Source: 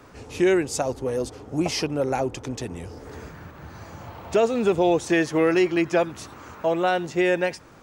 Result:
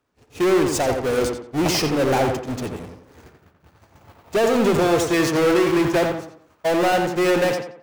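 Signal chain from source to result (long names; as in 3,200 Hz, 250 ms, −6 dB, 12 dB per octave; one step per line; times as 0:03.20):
power curve on the samples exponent 0.35
noise gate −18 dBFS, range −46 dB
tape delay 87 ms, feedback 40%, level −3 dB, low-pass 2,300 Hz
level −4 dB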